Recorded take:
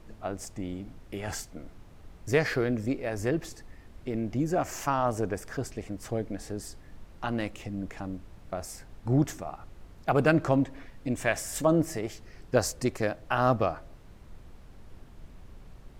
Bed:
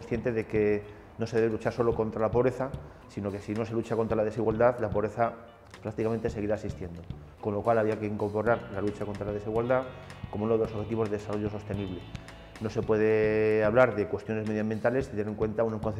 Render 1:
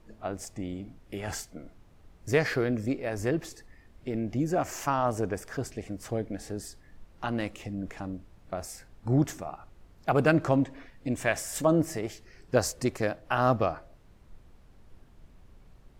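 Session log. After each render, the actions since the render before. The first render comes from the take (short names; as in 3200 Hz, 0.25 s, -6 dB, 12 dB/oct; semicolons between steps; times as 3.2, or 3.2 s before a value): noise print and reduce 6 dB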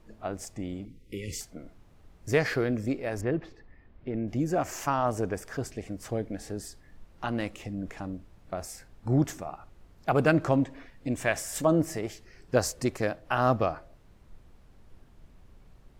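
0.85–1.41 brick-wall FIR band-stop 540–1900 Hz; 3.21–4.28 air absorption 330 m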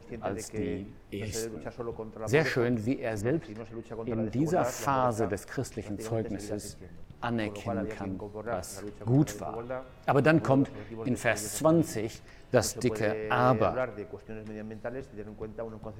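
add bed -10.5 dB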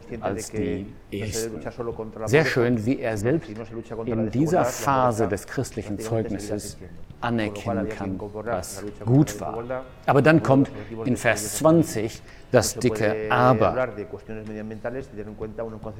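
gain +6.5 dB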